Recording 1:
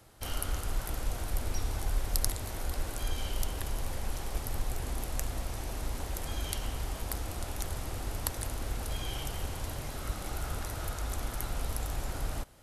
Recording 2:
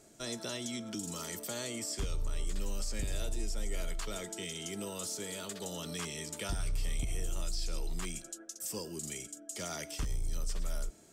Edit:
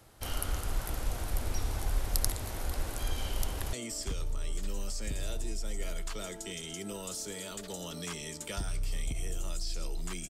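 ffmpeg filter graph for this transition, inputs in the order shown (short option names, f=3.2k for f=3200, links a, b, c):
-filter_complex "[0:a]apad=whole_dur=10.29,atrim=end=10.29,atrim=end=3.732[a];[1:a]atrim=start=1.648:end=8.21[b];[a][b]acrossfade=d=0.004:c1=hsin:c2=hsin,asplit=2[c][d];[d]afade=t=in:st=3.3:d=0.01,afade=t=out:st=3.73:d=0.01,aecho=0:1:600|1200|1800|2400|3000|3600|4200|4800|5400|6000|6600|7200:0.125893|0.107009|0.0909574|0.0773138|0.0657167|0.0558592|0.0474803|0.0403583|0.0343045|0.0291588|0.024785|0.0210673[e];[c][e]amix=inputs=2:normalize=0"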